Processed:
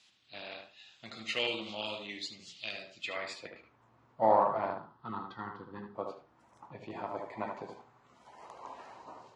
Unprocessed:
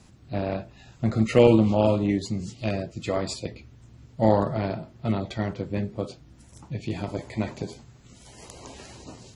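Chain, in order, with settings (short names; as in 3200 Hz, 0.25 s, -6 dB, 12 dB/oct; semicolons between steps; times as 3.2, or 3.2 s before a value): 4.7–5.95 fixed phaser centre 2300 Hz, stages 6; band-pass sweep 3400 Hz -> 1000 Hz, 2.92–3.75; tape echo 76 ms, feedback 21%, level -4 dB, low-pass 2000 Hz; gain +3.5 dB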